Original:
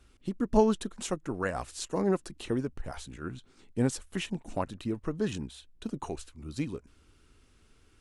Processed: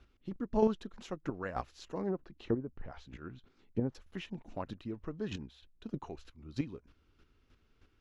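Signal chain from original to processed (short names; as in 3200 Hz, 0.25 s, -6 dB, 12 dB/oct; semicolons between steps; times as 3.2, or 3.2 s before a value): chopper 3.2 Hz, depth 60%, duty 15%; 2.09–3.95 treble ducked by the level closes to 880 Hz, closed at -32 dBFS; running mean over 5 samples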